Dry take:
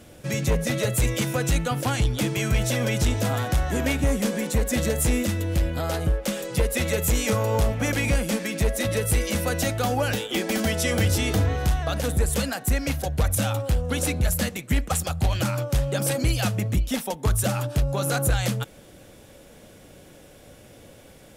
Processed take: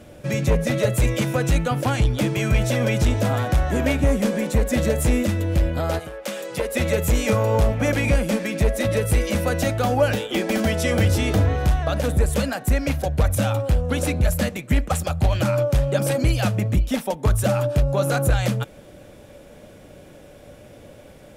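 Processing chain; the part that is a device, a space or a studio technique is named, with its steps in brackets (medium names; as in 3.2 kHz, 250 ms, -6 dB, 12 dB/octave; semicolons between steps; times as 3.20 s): inside a helmet (treble shelf 3 kHz -7.5 dB; small resonant body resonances 590/2400 Hz, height 8 dB, ringing for 95 ms); 5.98–6.74 s: high-pass 1.3 kHz -> 320 Hz 6 dB/octave; trim +3.5 dB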